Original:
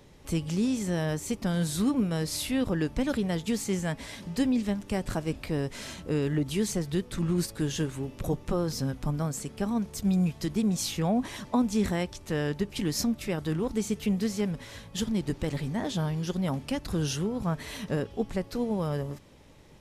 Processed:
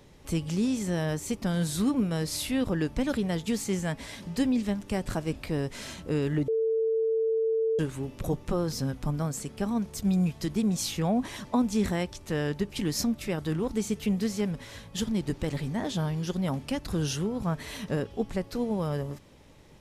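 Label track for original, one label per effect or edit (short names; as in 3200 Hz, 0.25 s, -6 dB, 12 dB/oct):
6.480000	7.790000	bleep 447 Hz -23 dBFS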